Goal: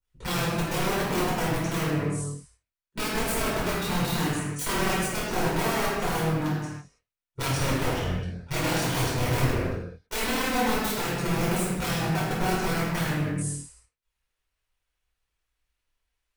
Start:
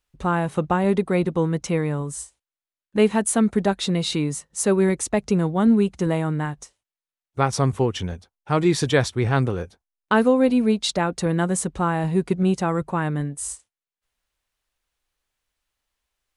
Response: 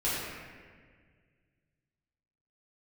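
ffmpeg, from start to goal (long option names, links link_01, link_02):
-filter_complex "[0:a]equalizer=frequency=390:width=0.52:gain=-3,aeval=exprs='(mod(8.41*val(0)+1,2)-1)/8.41':channel_layout=same,adynamicequalizer=threshold=0.0112:dfrequency=3700:dqfactor=0.77:tfrequency=3700:tqfactor=0.77:attack=5:release=100:ratio=0.375:range=2:mode=cutabove:tftype=bell,tremolo=f=39:d=0.824[link_01];[1:a]atrim=start_sample=2205,afade=type=out:start_time=0.39:duration=0.01,atrim=end_sample=17640[link_02];[link_01][link_02]afir=irnorm=-1:irlink=0,volume=-6.5dB"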